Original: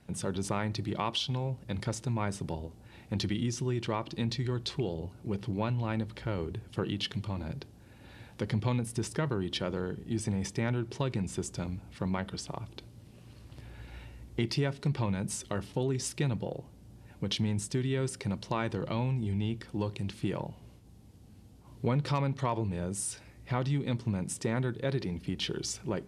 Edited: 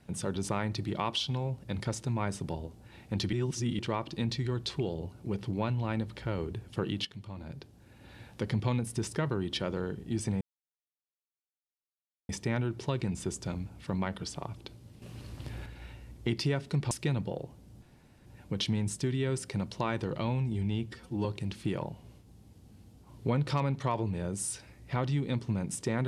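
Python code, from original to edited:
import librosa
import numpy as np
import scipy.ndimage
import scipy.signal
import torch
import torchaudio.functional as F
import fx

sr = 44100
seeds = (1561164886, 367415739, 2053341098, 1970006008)

y = fx.edit(x, sr, fx.reverse_span(start_s=3.33, length_s=0.46),
    fx.fade_in_from(start_s=7.05, length_s=1.15, floor_db=-12.0),
    fx.insert_silence(at_s=10.41, length_s=1.88),
    fx.clip_gain(start_s=13.14, length_s=0.64, db=7.0),
    fx.cut(start_s=15.03, length_s=1.03),
    fx.insert_room_tone(at_s=16.97, length_s=0.44),
    fx.stretch_span(start_s=19.57, length_s=0.26, factor=1.5), tone=tone)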